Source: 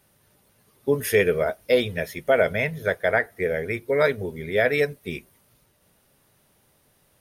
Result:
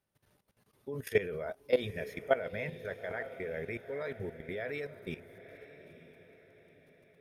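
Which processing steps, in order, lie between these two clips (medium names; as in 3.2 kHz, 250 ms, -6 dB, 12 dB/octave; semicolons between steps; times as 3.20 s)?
treble shelf 5.8 kHz -8 dB; level held to a coarse grid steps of 16 dB; on a send: echo that smears into a reverb 914 ms, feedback 44%, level -14 dB; on the sum: trim -5.5 dB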